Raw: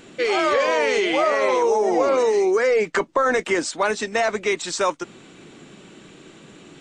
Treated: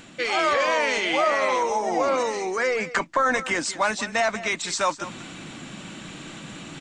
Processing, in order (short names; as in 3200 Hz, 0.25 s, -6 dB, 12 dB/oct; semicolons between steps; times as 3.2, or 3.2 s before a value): bell 410 Hz -13 dB 0.54 oct; reverse; upward compressor, threshold -29 dBFS; reverse; echo 0.189 s -15 dB